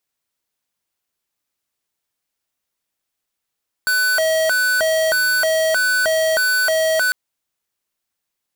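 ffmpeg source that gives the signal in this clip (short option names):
-f lavfi -i "aevalsrc='0.141*(2*lt(mod((1070*t+430/1.6*(0.5-abs(mod(1.6*t,1)-0.5))),1),0.5)-1)':d=3.25:s=44100"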